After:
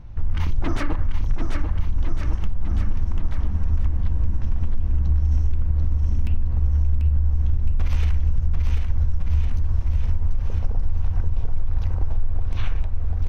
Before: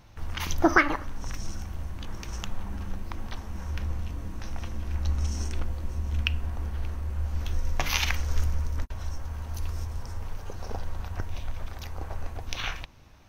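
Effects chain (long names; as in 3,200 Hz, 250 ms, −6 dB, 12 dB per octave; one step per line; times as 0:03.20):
on a send at −16.5 dB: convolution reverb RT60 1.0 s, pre-delay 3 ms
on the sum: wave folding −21 dBFS
RIAA equalisation playback
brickwall limiter −10.5 dBFS, peak gain reduction 8.5 dB
bouncing-ball delay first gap 740 ms, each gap 0.9×, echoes 5
downward compressor, threshold −14 dBFS, peak gain reduction 7.5 dB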